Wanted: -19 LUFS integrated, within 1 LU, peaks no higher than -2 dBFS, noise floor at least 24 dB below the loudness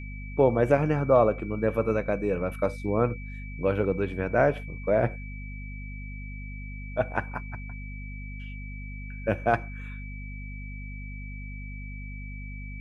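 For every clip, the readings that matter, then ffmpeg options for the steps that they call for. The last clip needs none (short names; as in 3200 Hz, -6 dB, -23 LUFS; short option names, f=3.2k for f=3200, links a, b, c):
hum 50 Hz; harmonics up to 250 Hz; hum level -35 dBFS; steady tone 2300 Hz; tone level -44 dBFS; loudness -26.5 LUFS; peak -6.5 dBFS; loudness target -19.0 LUFS
-> -af "bandreject=f=50:t=h:w=6,bandreject=f=100:t=h:w=6,bandreject=f=150:t=h:w=6,bandreject=f=200:t=h:w=6,bandreject=f=250:t=h:w=6"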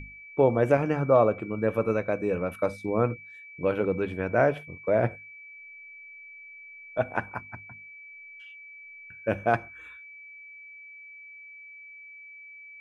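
hum none; steady tone 2300 Hz; tone level -44 dBFS
-> -af "bandreject=f=2.3k:w=30"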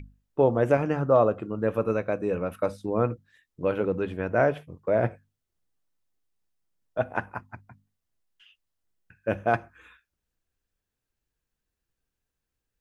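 steady tone none; loudness -26.5 LUFS; peak -7.0 dBFS; loudness target -19.0 LUFS
-> -af "volume=7.5dB,alimiter=limit=-2dB:level=0:latency=1"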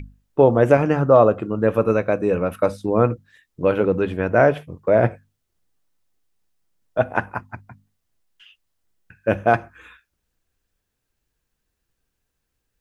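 loudness -19.5 LUFS; peak -2.0 dBFS; noise floor -77 dBFS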